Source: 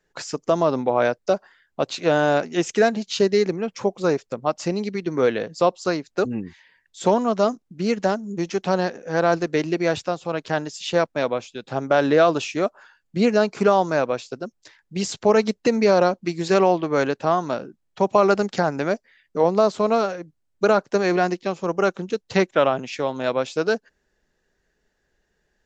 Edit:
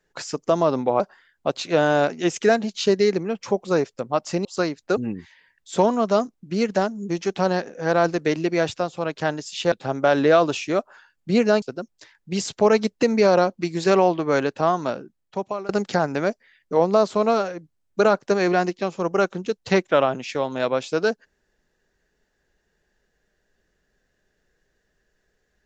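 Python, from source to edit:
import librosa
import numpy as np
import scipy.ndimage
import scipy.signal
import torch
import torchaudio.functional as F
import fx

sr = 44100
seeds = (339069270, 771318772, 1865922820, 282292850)

y = fx.edit(x, sr, fx.cut(start_s=1.0, length_s=0.33),
    fx.cut(start_s=4.78, length_s=0.95),
    fx.cut(start_s=11.0, length_s=0.59),
    fx.cut(start_s=13.49, length_s=0.77),
    fx.fade_out_to(start_s=17.58, length_s=0.75, floor_db=-23.0), tone=tone)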